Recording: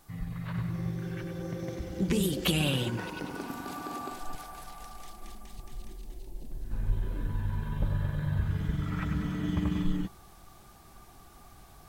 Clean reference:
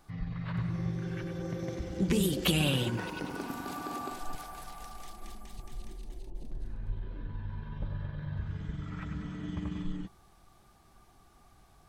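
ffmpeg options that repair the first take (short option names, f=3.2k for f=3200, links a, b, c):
-af "agate=range=-21dB:threshold=-44dB,asetnsamples=n=441:p=0,asendcmd='6.71 volume volume -7dB',volume=0dB"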